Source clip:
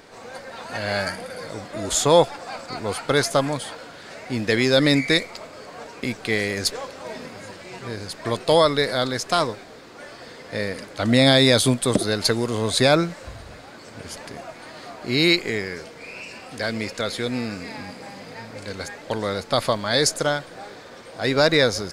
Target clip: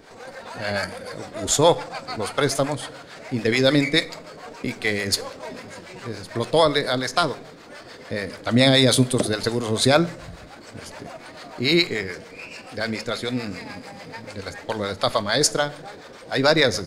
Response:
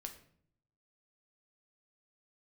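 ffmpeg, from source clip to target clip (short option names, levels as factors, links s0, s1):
-filter_complex "[0:a]acrossover=split=510[s0][s1];[s0]aeval=exprs='val(0)*(1-0.7/2+0.7/2*cos(2*PI*5.3*n/s))':c=same[s2];[s1]aeval=exprs='val(0)*(1-0.7/2-0.7/2*cos(2*PI*5.3*n/s))':c=same[s3];[s2][s3]amix=inputs=2:normalize=0,atempo=1.3,asplit=2[s4][s5];[1:a]atrim=start_sample=2205[s6];[s5][s6]afir=irnorm=-1:irlink=0,volume=0.75[s7];[s4][s7]amix=inputs=2:normalize=0"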